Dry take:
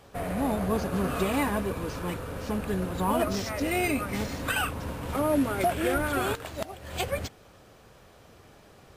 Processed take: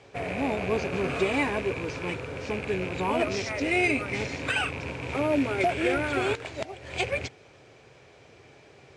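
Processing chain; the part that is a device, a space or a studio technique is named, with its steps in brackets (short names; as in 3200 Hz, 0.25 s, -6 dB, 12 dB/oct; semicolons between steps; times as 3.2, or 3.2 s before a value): car door speaker with a rattle (rattling part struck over -34 dBFS, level -30 dBFS; speaker cabinet 90–7400 Hz, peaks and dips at 130 Hz +4 dB, 200 Hz -8 dB, 400 Hz +5 dB, 1200 Hz -5 dB, 2300 Hz +9 dB)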